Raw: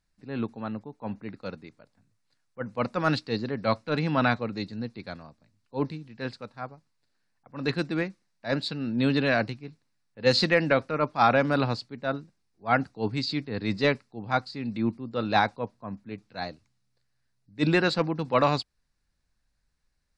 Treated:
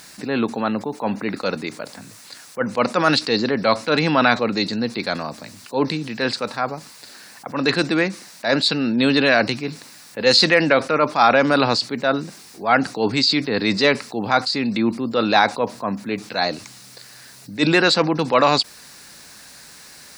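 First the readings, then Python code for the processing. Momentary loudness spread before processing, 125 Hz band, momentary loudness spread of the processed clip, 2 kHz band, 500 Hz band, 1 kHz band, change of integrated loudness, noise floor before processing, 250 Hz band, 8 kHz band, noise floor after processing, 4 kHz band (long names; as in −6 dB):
17 LU, +2.5 dB, 14 LU, +9.5 dB, +8.0 dB, +8.0 dB, +8.0 dB, −74 dBFS, +8.0 dB, +16.5 dB, −44 dBFS, +13.0 dB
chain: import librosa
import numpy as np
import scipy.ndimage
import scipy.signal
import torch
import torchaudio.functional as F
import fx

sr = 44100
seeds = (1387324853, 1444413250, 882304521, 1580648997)

y = scipy.signal.sosfilt(scipy.signal.bessel(2, 280.0, 'highpass', norm='mag', fs=sr, output='sos'), x)
y = fx.high_shelf(y, sr, hz=5000.0, db=8.5)
y = fx.env_flatten(y, sr, amount_pct=50)
y = F.gain(torch.from_numpy(y), 5.5).numpy()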